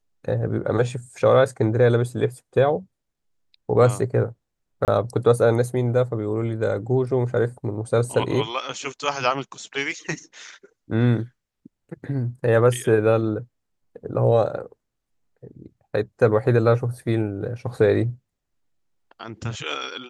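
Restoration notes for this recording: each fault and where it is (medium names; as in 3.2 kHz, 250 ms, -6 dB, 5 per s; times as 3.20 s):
4.85–4.88 s: dropout 28 ms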